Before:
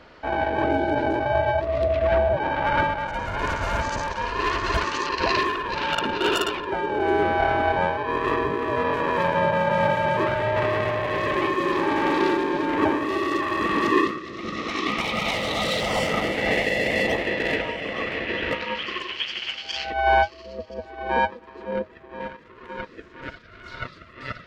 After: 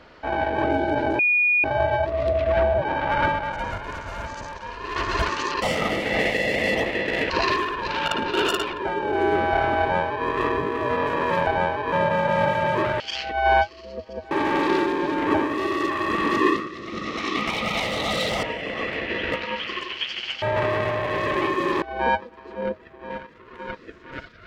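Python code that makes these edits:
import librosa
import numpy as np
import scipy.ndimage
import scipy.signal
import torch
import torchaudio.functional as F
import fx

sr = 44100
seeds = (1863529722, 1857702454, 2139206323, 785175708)

y = fx.edit(x, sr, fx.insert_tone(at_s=1.19, length_s=0.45, hz=2450.0, db=-16.0),
    fx.clip_gain(start_s=3.33, length_s=1.18, db=-7.5),
    fx.duplicate(start_s=7.68, length_s=0.45, to_s=9.34),
    fx.swap(start_s=10.42, length_s=1.4, other_s=19.61, other_length_s=1.31),
    fx.move(start_s=15.94, length_s=1.68, to_s=5.17), tone=tone)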